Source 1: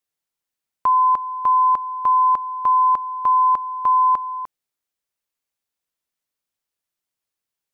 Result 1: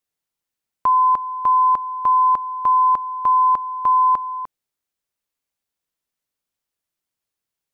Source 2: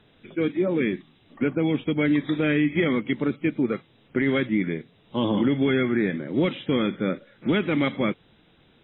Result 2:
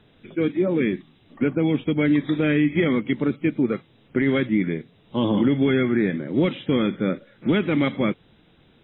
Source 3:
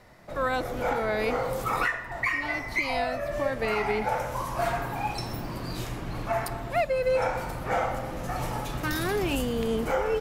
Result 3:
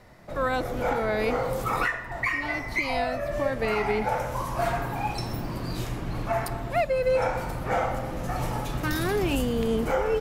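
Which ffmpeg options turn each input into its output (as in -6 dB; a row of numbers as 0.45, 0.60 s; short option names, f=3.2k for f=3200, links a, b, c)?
-af "lowshelf=f=420:g=3.5"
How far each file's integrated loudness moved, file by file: +0.5, +2.0, +1.0 LU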